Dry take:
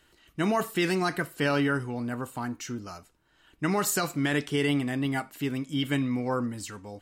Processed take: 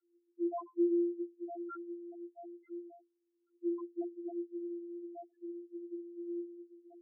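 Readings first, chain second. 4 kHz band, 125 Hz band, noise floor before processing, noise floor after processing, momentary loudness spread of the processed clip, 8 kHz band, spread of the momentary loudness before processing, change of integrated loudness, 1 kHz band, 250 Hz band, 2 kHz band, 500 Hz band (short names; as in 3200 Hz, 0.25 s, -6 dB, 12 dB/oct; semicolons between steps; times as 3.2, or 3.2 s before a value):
under -40 dB, under -40 dB, -65 dBFS, -80 dBFS, 15 LU, under -40 dB, 11 LU, -11.0 dB, -17.5 dB, -9.0 dB, under -35 dB, -8.0 dB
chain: vocoder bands 32, saw 345 Hz; air absorption 340 m; loudest bins only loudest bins 1; gain -4 dB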